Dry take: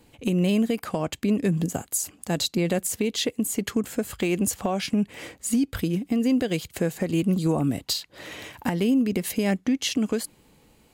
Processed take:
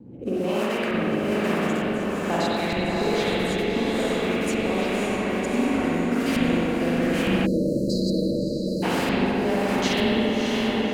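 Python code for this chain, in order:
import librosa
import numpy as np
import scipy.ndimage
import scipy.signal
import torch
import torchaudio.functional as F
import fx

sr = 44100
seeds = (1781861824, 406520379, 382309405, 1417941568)

y = fx.reverse_delay(x, sr, ms=258, wet_db=-9)
y = fx.high_shelf(y, sr, hz=8600.0, db=-10.0)
y = fx.mod_noise(y, sr, seeds[0], snr_db=16)
y = fx.filter_lfo_bandpass(y, sr, shape='saw_up', hz=1.1, low_hz=200.0, high_hz=2400.0, q=2.0)
y = fx.echo_diffused(y, sr, ms=605, feedback_pct=54, wet_db=-3.5)
y = fx.rotary(y, sr, hz=1.2)
y = fx.rev_spring(y, sr, rt60_s=1.7, pass_ms=(41, 58), chirp_ms=55, drr_db=-7.0)
y = fx.spec_erase(y, sr, start_s=7.46, length_s=1.37, low_hz=630.0, high_hz=3900.0)
y = fx.peak_eq(y, sr, hz=2200.0, db=-9.0, octaves=2.8)
y = fx.spectral_comp(y, sr, ratio=2.0)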